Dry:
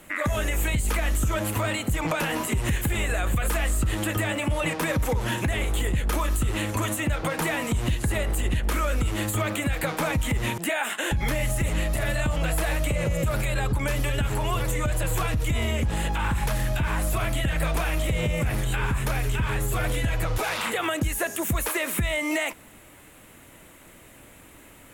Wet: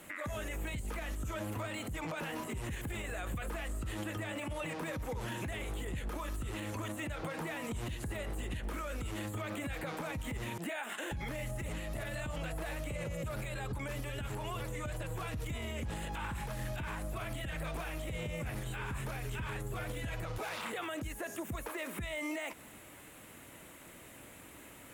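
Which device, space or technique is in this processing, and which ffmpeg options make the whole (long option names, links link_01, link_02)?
podcast mastering chain: -af "highpass=frequency=77:poles=1,deesser=0.75,acompressor=threshold=-32dB:ratio=3,alimiter=level_in=3.5dB:limit=-24dB:level=0:latency=1,volume=-3.5dB,volume=-2.5dB" -ar 48000 -c:a libmp3lame -b:a 128k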